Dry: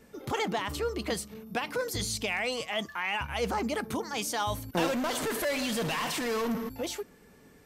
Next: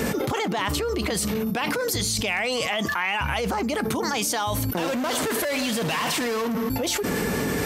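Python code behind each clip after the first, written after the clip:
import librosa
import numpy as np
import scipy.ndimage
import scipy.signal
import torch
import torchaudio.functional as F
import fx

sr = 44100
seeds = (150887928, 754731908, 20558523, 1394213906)

y = scipy.signal.sosfilt(scipy.signal.butter(2, 60.0, 'highpass', fs=sr, output='sos'), x)
y = fx.env_flatten(y, sr, amount_pct=100)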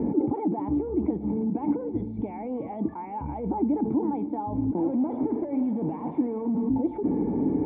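y = fx.formant_cascade(x, sr, vowel='u')
y = fx.echo_heads(y, sr, ms=221, heads='first and third', feedback_pct=47, wet_db=-21.5)
y = F.gain(torch.from_numpy(y), 8.5).numpy()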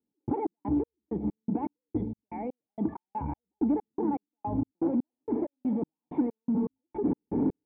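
y = fx.step_gate(x, sr, bpm=162, pattern='...xx..xx', floor_db=-60.0, edge_ms=4.5)
y = 10.0 ** (-16.5 / 20.0) * np.tanh(y / 10.0 ** (-16.5 / 20.0))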